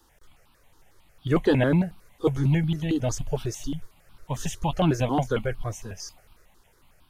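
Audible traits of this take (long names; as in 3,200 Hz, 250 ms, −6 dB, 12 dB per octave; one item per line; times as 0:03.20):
notches that jump at a steady rate 11 Hz 610–1,900 Hz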